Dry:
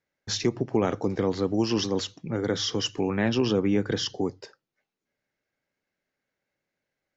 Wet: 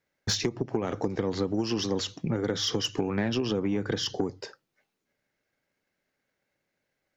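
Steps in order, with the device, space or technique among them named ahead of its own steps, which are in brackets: drum-bus smash (transient shaper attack +7 dB, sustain +3 dB; compression 6:1, threshold -26 dBFS, peak gain reduction 13 dB; saturation -19.5 dBFS, distortion -19 dB); trim +3 dB

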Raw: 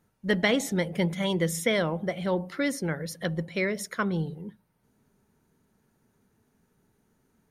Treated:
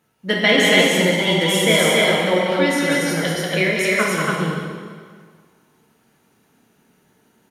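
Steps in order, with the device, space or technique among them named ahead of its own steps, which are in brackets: stadium PA (high-pass 230 Hz 6 dB/octave; peaking EQ 2.9 kHz +6 dB 0.7 oct; loudspeakers at several distances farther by 65 m -4 dB, 97 m -1 dB; reverberation RT60 1.8 s, pre-delay 6 ms, DRR -2.5 dB); trim +4.5 dB

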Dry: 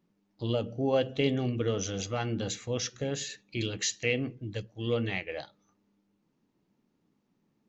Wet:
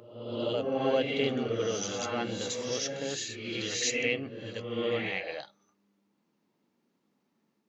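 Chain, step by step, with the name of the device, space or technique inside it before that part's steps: ghost voice (reverse; reverberation RT60 1.0 s, pre-delay 62 ms, DRR 0.5 dB; reverse; high-pass 410 Hz 6 dB/octave)

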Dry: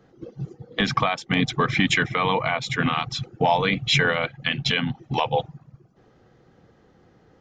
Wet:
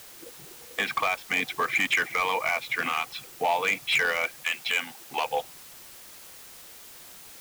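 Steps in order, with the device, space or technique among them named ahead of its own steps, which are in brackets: drive-through speaker (band-pass 480–3000 Hz; peaking EQ 2.4 kHz +8 dB 0.56 oct; hard clipper -14.5 dBFS, distortion -13 dB; white noise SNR 17 dB); 4.43–5.22 s: high-pass 670 Hz -> 160 Hz 6 dB/octave; trim -3.5 dB

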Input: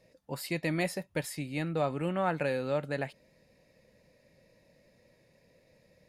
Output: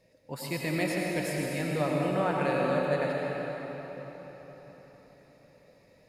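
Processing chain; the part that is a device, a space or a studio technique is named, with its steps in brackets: cathedral (reverberation RT60 4.7 s, pre-delay 80 ms, DRR -3 dB); trim -1 dB

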